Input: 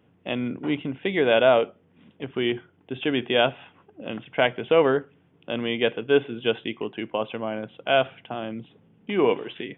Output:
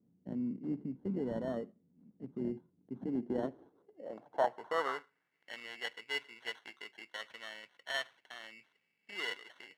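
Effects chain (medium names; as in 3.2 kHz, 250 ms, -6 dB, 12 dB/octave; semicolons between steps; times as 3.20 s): sample-and-hold 18×; band-pass sweep 210 Hz -> 2.4 kHz, 3.10–5.54 s; trim -5 dB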